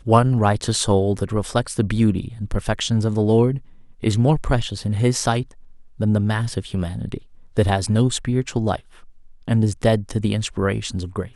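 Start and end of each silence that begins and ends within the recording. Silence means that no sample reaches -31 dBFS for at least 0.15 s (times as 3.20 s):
3.58–4.03 s
5.51–6.00 s
7.18–7.57 s
8.76–9.48 s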